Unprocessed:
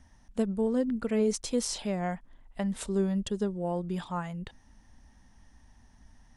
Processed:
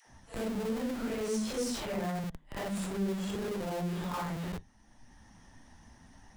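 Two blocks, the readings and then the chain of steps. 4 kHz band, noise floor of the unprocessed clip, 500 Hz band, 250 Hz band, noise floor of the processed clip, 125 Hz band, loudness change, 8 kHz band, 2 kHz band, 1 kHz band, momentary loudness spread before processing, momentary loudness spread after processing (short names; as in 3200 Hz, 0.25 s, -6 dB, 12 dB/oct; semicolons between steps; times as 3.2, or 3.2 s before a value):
-2.0 dB, -60 dBFS, -4.5 dB, -4.5 dB, -60 dBFS, -2.0 dB, -4.0 dB, -4.5 dB, +1.5 dB, -1.0 dB, 11 LU, 6 LU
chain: phase scrambler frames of 0.2 s; dispersion lows, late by 0.113 s, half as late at 430 Hz; flange 0.6 Hz, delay 7.8 ms, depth 5.3 ms, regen +76%; pre-echo 41 ms -15 dB; in parallel at -3 dB: Schmitt trigger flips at -44.5 dBFS; on the sum: harmonic-percussive split harmonic -5 dB; three-band squash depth 40%; gain +1.5 dB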